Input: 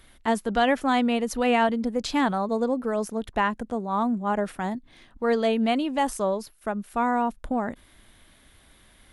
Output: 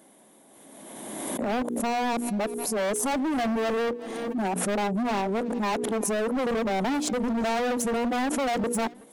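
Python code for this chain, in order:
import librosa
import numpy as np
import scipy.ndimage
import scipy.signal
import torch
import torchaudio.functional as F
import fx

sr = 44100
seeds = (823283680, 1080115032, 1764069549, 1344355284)

p1 = x[::-1].copy()
p2 = scipy.signal.sosfilt(scipy.signal.butter(4, 210.0, 'highpass', fs=sr, output='sos'), p1)
p3 = fx.band_shelf(p2, sr, hz=2500.0, db=-15.0, octaves=2.4)
p4 = fx.hum_notches(p3, sr, base_hz=60, count=8)
p5 = fx.level_steps(p4, sr, step_db=10)
p6 = p4 + F.gain(torch.from_numpy(p5), 0.0).numpy()
p7 = fx.high_shelf(p6, sr, hz=7000.0, db=-5.5)
p8 = np.clip(10.0 ** (29.5 / 20.0) * p7, -1.0, 1.0) / 10.0 ** (29.5 / 20.0)
p9 = p8 + fx.echo_feedback(p8, sr, ms=373, feedback_pct=37, wet_db=-24, dry=0)
p10 = fx.pre_swell(p9, sr, db_per_s=29.0)
y = F.gain(torch.from_numpy(p10), 4.5).numpy()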